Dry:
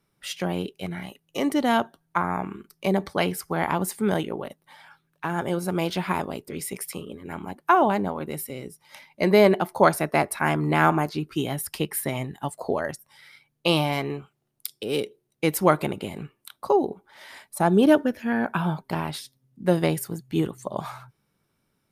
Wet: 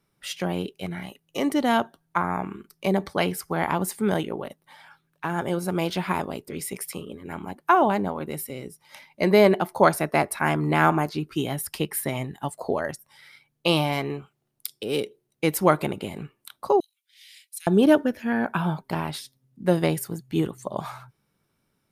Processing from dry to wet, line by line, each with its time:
0:16.80–0:17.67: Butterworth high-pass 2,400 Hz

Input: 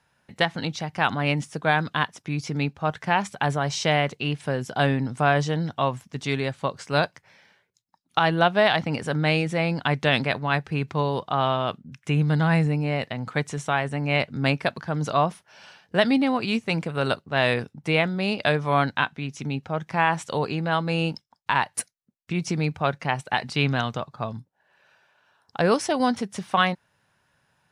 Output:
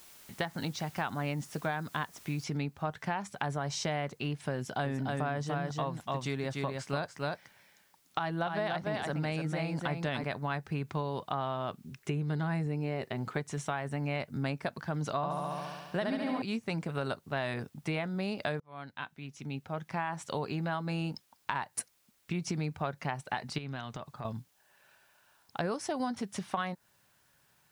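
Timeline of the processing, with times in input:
0:02.44: noise floor change −51 dB −67 dB
0:04.55–0:10.24: single-tap delay 293 ms −4.5 dB
0:11.83–0:13.40: parametric band 390 Hz +12.5 dB 0.27 octaves
0:15.16–0:16.42: flutter between parallel walls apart 11.9 metres, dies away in 1.4 s
0:18.60–0:20.39: fade in
0:23.58–0:24.25: downward compressor 4 to 1, threshold −33 dBFS
whole clip: notch filter 490 Hz, Q 12; dynamic equaliser 2,900 Hz, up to −6 dB, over −38 dBFS, Q 1.3; downward compressor, threshold −26 dBFS; level −4 dB

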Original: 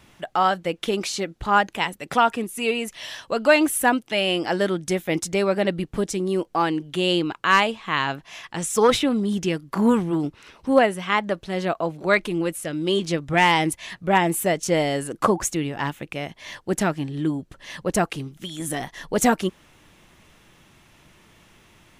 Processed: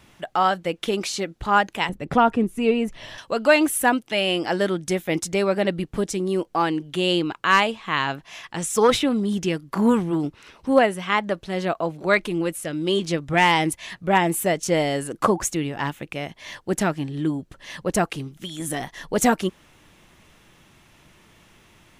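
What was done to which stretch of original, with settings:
0:01.89–0:03.18: spectral tilt −3.5 dB per octave

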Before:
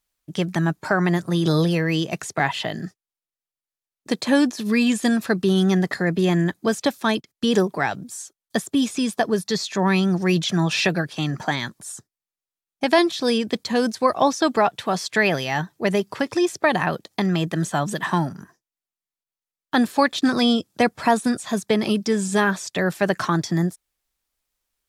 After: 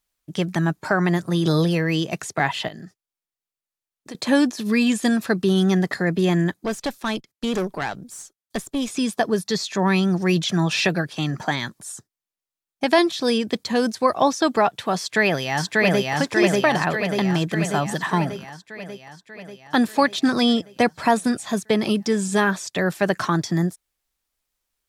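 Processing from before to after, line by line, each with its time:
0:02.68–0:04.15: downward compressor 2.5 to 1, threshold −38 dBFS
0:06.54–0:08.88: tube saturation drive 19 dB, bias 0.65
0:14.98–0:16.13: delay throw 590 ms, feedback 65%, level −0.5 dB

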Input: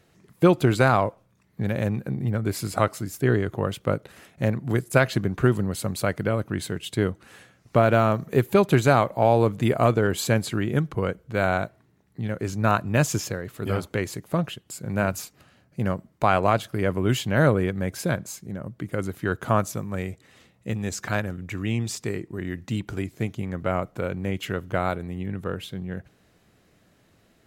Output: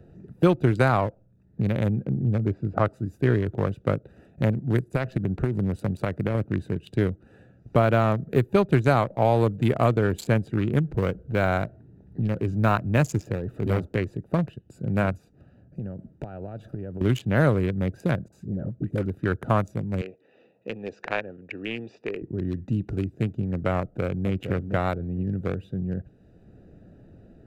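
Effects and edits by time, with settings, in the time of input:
0:02.04–0:02.86: low-pass filter 1,600 Hz
0:04.83–0:06.35: downward compressor 8 to 1, threshold −20 dBFS
0:10.84–0:13.85: mu-law and A-law mismatch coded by mu
0:15.17–0:17.01: downward compressor 5 to 1, threshold −36 dBFS
0:18.28–0:19.06: all-pass dispersion highs, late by 45 ms, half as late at 730 Hz
0:20.01–0:22.22: loudspeaker in its box 460–5,300 Hz, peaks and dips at 470 Hz +4 dB, 1,300 Hz −4 dB, 2,600 Hz +7 dB
0:23.79–0:24.30: delay throw 460 ms, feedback 20%, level −7 dB
whole clip: adaptive Wiener filter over 41 samples; low-shelf EQ 62 Hz +8 dB; multiband upward and downward compressor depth 40%

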